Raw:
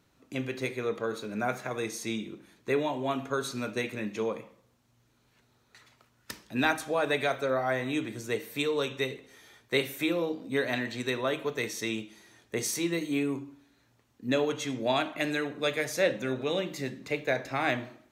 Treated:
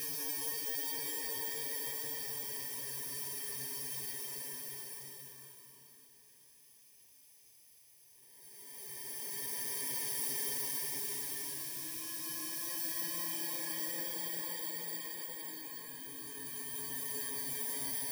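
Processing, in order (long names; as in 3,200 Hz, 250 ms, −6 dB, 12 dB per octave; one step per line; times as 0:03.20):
samples in bit-reversed order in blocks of 32 samples
extreme stretch with random phases 8.9×, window 0.50 s, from 0:08.61
guitar amp tone stack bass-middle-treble 5-5-5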